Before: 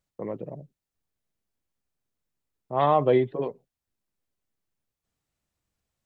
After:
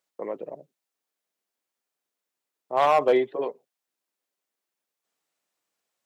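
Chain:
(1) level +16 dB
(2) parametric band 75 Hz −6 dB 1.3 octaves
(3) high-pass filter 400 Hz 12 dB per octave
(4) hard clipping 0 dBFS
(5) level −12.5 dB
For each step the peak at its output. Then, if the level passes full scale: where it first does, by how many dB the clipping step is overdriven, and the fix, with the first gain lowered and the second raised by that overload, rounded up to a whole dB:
+7.0, +7.0, +5.5, 0.0, −12.5 dBFS
step 1, 5.5 dB
step 1 +10 dB, step 5 −6.5 dB

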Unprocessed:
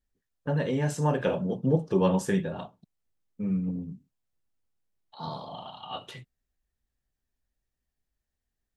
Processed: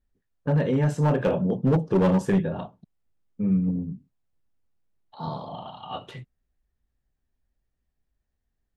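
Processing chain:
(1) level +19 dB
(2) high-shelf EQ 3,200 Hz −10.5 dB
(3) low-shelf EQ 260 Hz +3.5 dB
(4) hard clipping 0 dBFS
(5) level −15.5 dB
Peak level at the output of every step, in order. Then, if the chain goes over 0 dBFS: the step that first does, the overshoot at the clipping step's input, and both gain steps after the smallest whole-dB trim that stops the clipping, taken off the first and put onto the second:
+7.5, +7.0, +9.0, 0.0, −15.5 dBFS
step 1, 9.0 dB
step 1 +10 dB, step 5 −6.5 dB

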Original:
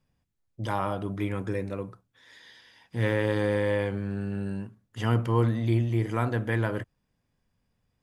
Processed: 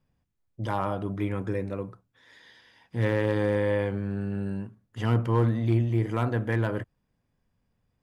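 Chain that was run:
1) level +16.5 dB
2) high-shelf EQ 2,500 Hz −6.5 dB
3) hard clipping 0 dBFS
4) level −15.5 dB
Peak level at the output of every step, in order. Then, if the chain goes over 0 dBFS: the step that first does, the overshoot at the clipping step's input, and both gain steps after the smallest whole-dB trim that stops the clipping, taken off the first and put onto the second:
+4.5, +4.0, 0.0, −15.5 dBFS
step 1, 4.0 dB
step 1 +12.5 dB, step 4 −11.5 dB

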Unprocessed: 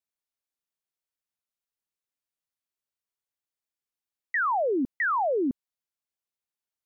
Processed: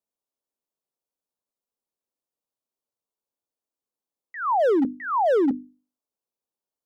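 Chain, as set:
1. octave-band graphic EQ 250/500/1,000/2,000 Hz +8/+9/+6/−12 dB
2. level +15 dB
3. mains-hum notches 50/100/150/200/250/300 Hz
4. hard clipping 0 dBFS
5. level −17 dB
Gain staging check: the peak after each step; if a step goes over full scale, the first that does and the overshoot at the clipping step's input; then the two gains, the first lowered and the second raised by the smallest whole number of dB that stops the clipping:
−11.0, +4.0, +4.5, 0.0, −17.0 dBFS
step 2, 4.5 dB
step 2 +10 dB, step 5 −12 dB

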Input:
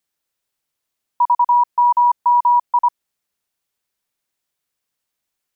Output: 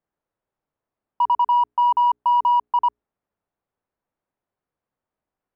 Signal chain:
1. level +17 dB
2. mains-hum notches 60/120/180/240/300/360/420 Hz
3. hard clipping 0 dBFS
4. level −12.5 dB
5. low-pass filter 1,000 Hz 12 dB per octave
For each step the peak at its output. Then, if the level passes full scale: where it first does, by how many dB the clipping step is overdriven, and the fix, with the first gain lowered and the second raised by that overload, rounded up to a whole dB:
+7.5, +7.5, 0.0, −12.5, −13.0 dBFS
step 1, 7.5 dB
step 1 +9 dB, step 4 −4.5 dB

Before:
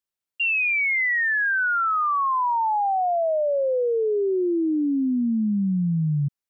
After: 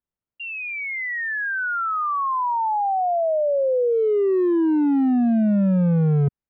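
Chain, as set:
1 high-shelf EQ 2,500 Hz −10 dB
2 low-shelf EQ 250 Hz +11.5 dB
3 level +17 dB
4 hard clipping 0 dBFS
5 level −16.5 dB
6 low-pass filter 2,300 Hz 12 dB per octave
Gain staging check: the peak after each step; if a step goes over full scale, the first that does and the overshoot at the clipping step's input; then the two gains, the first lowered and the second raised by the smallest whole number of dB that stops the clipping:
−19.0, −10.5, +6.5, 0.0, −16.5, −16.5 dBFS
step 3, 6.5 dB
step 3 +10 dB, step 5 −9.5 dB

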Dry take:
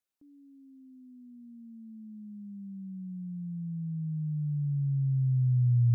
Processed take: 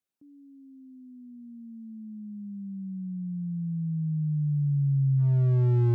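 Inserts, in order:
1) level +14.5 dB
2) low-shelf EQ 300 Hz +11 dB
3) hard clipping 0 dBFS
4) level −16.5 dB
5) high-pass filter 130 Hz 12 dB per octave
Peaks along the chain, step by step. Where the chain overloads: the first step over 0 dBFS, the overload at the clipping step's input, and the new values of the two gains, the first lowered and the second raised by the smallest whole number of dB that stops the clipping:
−4.5, +5.0, 0.0, −16.5, −17.0 dBFS
step 2, 5.0 dB
step 1 +9.5 dB, step 4 −11.5 dB

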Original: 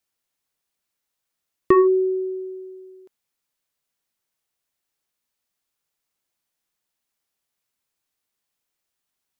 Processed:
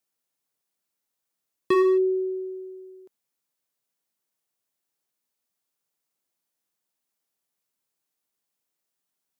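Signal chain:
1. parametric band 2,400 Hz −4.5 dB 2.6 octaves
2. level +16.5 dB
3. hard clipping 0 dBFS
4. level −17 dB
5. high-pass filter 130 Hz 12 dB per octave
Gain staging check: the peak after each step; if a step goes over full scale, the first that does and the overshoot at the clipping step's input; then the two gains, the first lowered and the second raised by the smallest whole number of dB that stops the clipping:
−8.5, +8.0, 0.0, −17.0, −11.5 dBFS
step 2, 8.0 dB
step 2 +8.5 dB, step 4 −9 dB

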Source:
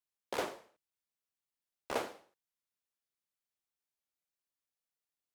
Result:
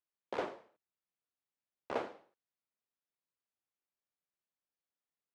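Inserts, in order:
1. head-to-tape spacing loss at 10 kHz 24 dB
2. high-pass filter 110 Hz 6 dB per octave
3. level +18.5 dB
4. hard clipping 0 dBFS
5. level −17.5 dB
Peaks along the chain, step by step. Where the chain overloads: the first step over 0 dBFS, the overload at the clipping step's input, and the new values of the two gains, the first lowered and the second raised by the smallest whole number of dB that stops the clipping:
−23.5, −23.0, −4.5, −4.5, −22.0 dBFS
no step passes full scale

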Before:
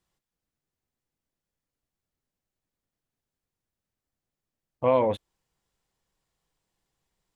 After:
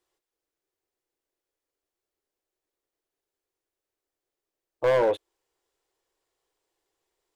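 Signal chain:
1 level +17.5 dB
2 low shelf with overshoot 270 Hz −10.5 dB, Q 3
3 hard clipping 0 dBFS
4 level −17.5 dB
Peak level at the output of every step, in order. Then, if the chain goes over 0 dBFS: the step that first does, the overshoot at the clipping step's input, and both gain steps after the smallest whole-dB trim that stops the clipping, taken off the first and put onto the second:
+6.5, +9.5, 0.0, −17.5 dBFS
step 1, 9.5 dB
step 1 +7.5 dB, step 4 −7.5 dB

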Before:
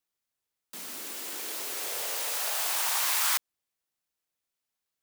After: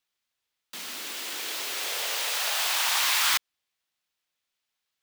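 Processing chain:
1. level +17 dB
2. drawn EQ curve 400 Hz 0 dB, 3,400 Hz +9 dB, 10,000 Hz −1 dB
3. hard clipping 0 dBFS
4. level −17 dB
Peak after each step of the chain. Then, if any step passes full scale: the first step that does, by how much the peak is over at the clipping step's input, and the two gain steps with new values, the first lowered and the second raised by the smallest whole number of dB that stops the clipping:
+3.5, +6.5, 0.0, −17.0 dBFS
step 1, 6.5 dB
step 1 +10 dB, step 4 −10 dB

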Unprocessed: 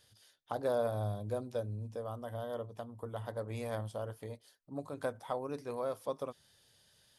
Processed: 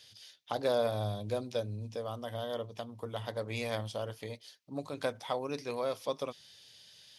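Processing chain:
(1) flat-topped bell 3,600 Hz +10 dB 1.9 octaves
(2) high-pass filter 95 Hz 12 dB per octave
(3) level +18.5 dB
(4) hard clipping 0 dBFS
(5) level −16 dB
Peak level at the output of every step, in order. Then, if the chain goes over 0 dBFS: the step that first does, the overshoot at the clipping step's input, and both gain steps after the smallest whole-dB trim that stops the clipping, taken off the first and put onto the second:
−20.5, −20.5, −2.0, −2.0, −18.0 dBFS
no step passes full scale

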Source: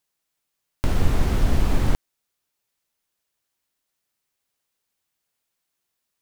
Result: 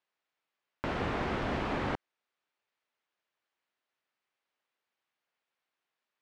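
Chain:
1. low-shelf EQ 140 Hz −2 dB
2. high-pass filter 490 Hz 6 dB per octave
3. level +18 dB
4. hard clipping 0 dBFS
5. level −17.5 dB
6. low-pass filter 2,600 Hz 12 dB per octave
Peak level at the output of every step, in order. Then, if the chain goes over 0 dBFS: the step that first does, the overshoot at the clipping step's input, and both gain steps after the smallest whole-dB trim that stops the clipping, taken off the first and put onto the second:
−7.0, −11.0, +7.0, 0.0, −17.5, −17.0 dBFS
step 3, 7.0 dB
step 3 +11 dB, step 5 −10.5 dB

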